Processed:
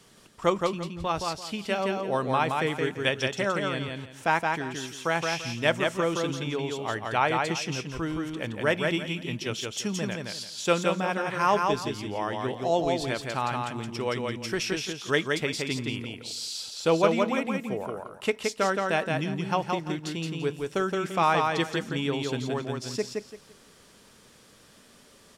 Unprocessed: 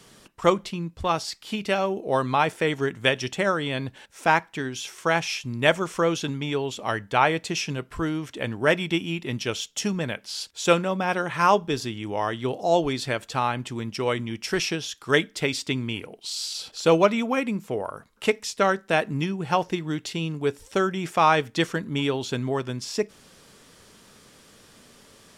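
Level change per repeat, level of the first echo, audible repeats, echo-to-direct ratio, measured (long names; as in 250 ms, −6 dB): −12.0 dB, −3.5 dB, 3, −3.0 dB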